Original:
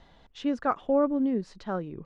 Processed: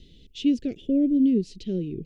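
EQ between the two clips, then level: elliptic band-stop 400–2700 Hz, stop band 80 dB; +7.5 dB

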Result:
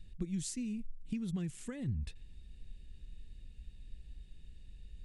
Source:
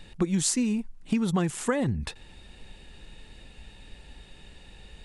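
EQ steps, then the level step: dynamic bell 2.3 kHz, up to +4 dB, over -49 dBFS, Q 1.2; amplifier tone stack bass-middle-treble 10-0-1; +5.0 dB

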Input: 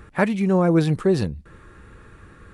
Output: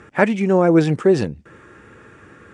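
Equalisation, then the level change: cabinet simulation 150–8000 Hz, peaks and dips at 180 Hz -5 dB, 1.1 kHz -4 dB, 4.1 kHz -9 dB; +5.5 dB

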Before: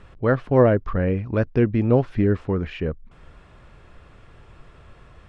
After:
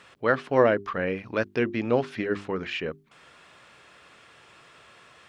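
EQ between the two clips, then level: Bessel high-pass 250 Hz, order 2; tilt shelf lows -6.5 dB, about 1.5 kHz; hum notches 50/100/150/200/250/300/350/400 Hz; +2.5 dB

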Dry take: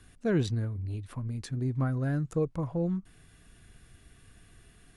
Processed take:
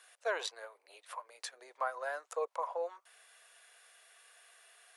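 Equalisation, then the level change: steep high-pass 520 Hz 48 dB/octave; dynamic bell 980 Hz, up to +8 dB, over -60 dBFS, Q 3.2; +2.0 dB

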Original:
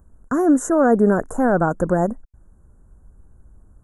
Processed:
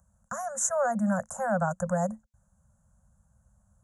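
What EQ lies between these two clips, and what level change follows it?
high-pass 80 Hz 12 dB/octave; Chebyshev band-stop 220–520 Hz, order 5; peaking EQ 6.5 kHz +12.5 dB 1 oct; -7.5 dB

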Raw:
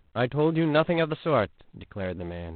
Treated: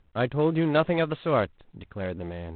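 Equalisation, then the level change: distance through air 79 m; 0.0 dB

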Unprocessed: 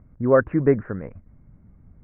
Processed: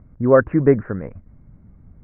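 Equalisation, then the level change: distance through air 150 m; +4.0 dB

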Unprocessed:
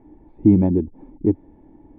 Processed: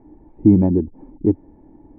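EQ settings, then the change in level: low-pass 1.7 kHz 12 dB/octave; +1.5 dB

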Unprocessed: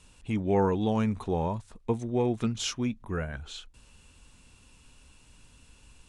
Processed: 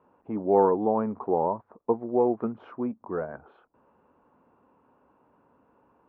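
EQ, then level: high-pass 360 Hz 12 dB/octave; low-pass 1.1 kHz 24 dB/octave; +7.0 dB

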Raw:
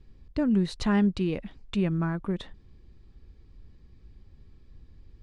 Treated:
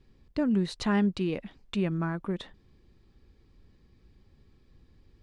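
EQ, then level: bass shelf 110 Hz -10.5 dB; 0.0 dB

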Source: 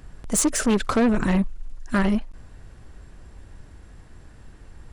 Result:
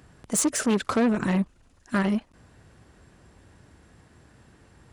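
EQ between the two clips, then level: high-pass 100 Hz 12 dB/octave; -2.5 dB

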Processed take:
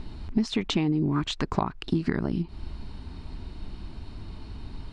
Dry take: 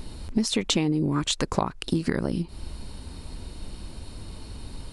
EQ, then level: low-pass 3.9 kHz 6 dB/octave; distance through air 93 m; peaking EQ 520 Hz -15 dB 0.21 oct; 0.0 dB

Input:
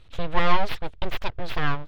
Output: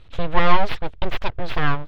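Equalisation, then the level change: low-pass 3.9 kHz 6 dB/octave; +4.5 dB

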